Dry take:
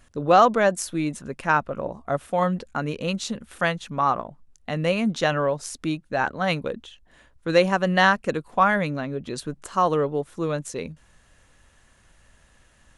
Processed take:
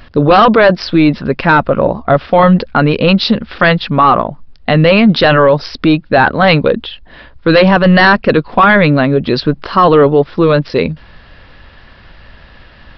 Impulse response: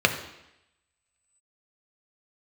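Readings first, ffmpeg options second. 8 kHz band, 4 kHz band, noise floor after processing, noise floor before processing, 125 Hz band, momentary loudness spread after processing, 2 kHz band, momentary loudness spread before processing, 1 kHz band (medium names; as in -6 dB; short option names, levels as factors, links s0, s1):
no reading, +15.0 dB, -40 dBFS, -58 dBFS, +16.5 dB, 8 LU, +13.5 dB, 14 LU, +11.5 dB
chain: -af "aresample=11025,aresample=44100,apsyclip=11.2,volume=0.794"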